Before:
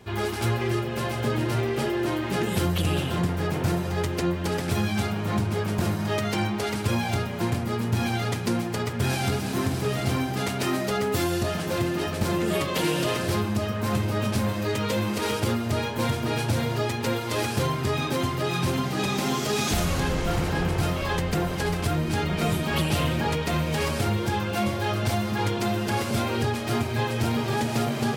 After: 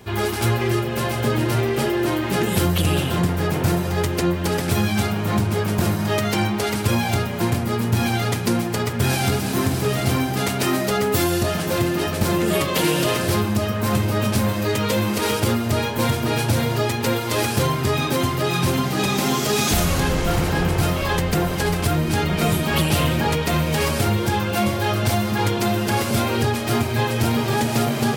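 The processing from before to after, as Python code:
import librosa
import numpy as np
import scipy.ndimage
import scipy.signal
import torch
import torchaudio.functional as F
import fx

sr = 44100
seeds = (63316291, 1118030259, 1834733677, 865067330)

y = fx.high_shelf(x, sr, hz=11000.0, db=8.5)
y = y * librosa.db_to_amplitude(5.0)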